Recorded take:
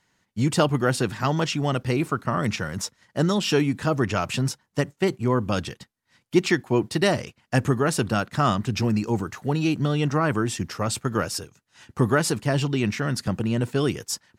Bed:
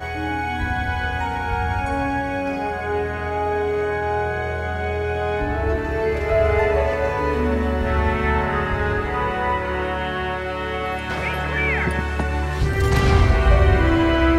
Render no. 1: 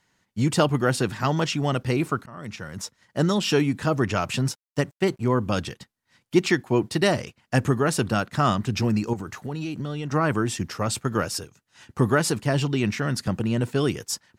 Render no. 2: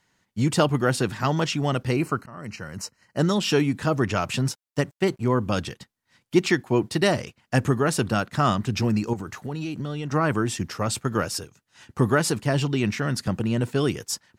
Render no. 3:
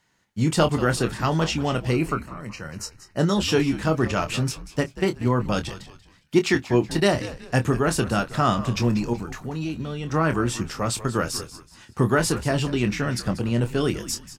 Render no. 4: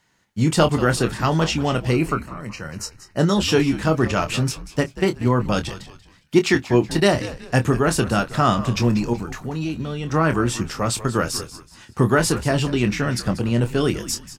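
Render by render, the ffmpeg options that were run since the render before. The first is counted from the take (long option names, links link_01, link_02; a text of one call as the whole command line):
ffmpeg -i in.wav -filter_complex "[0:a]asettb=1/sr,asplit=3[link_01][link_02][link_03];[link_01]atrim=end=4.484[link_04];[link_02]atrim=start=4.48:end=5.28,asetpts=PTS-STARTPTS,afade=type=in:duration=0.004:curve=qsin,afade=type=out:start_time=0.796:duration=0.004:curve=qsin,aeval=exprs='sgn(val(0))*max(abs(val(0))-0.00178,0)':channel_layout=same[link_05];[link_03]atrim=start=5.276[link_06];[link_04][link_05]acrossfade=duration=0.004:curve1=hsin:curve2=qsin[link_07];[link_07][link_06]acrossfade=duration=0.004:curve1=qsin:curve2=hsin,asettb=1/sr,asplit=3[link_08][link_09][link_10];[link_08]atrim=end=9.134[link_11];[link_09]atrim=start=9.13:end=10.12,asetpts=PTS-STARTPTS,afade=type=in:duration=0.004:curve=qsin,afade=type=out:start_time=0.986:duration=0.004:curve=qsin,acompressor=threshold=-27dB:ratio=6:attack=3.2:release=140:knee=1:detection=peak[link_12];[link_10]atrim=start=10.116[link_13];[link_11][link_12]acrossfade=duration=0.004:curve1=hsin:curve2=qsin[link_14];[link_14][link_13]acrossfade=duration=0.004:curve1=qsin:curve2=hsin,asplit=2[link_15][link_16];[link_15]atrim=end=2.26,asetpts=PTS-STARTPTS,afade=type=out:start_time=2.256:duration=0.004:curve=hsin:silence=0.0794328[link_17];[link_16]atrim=start=2.26,asetpts=PTS-STARTPTS,afade=type=in:duration=0.95:silence=0.0794328[link_18];[link_17][link_18]concat=n=2:v=0:a=1" out.wav
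ffmpeg -i in.wav -filter_complex "[0:a]asettb=1/sr,asplit=3[link_01][link_02][link_03];[link_01]atrim=end=1.964[link_04];[link_02]atrim=start=1.96:end=3.19,asetpts=PTS-STARTPTS,afade=type=in:duration=0.004:curve=qsin,afade=type=out:start_time=1.226:duration=0.004:curve=qsin,asuperstop=centerf=3500:order=12:qfactor=4.5[link_05];[link_03]atrim=start=3.186[link_06];[link_04][link_05]acrossfade=duration=0.004:curve1=hsin:curve2=qsin[link_07];[link_07][link_06]acrossfade=duration=0.004:curve1=qsin:curve2=hsin" out.wav
ffmpeg -i in.wav -filter_complex "[0:a]asplit=2[link_01][link_02];[link_02]adelay=25,volume=-8.5dB[link_03];[link_01][link_03]amix=inputs=2:normalize=0,asplit=4[link_04][link_05][link_06][link_07];[link_05]adelay=187,afreqshift=-91,volume=-14.5dB[link_08];[link_06]adelay=374,afreqshift=-182,volume=-23.6dB[link_09];[link_07]adelay=561,afreqshift=-273,volume=-32.7dB[link_10];[link_04][link_08][link_09][link_10]amix=inputs=4:normalize=0" out.wav
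ffmpeg -i in.wav -af "volume=3dB" out.wav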